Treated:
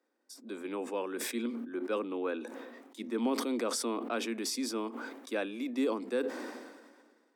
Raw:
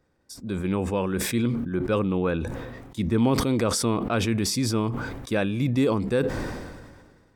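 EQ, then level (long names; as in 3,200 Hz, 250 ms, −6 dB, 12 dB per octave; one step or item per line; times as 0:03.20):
Butterworth high-pass 230 Hz 72 dB per octave
−8.0 dB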